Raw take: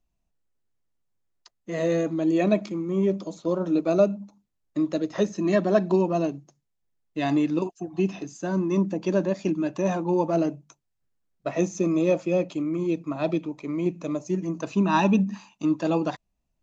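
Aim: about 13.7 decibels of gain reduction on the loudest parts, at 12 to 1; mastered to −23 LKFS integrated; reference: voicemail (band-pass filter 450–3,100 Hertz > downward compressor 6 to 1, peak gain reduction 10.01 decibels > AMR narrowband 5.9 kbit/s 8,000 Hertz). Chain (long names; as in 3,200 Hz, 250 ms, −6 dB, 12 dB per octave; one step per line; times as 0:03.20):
downward compressor 12 to 1, threshold −29 dBFS
band-pass filter 450–3,100 Hz
downward compressor 6 to 1, threshold −40 dBFS
level +23 dB
AMR narrowband 5.9 kbit/s 8,000 Hz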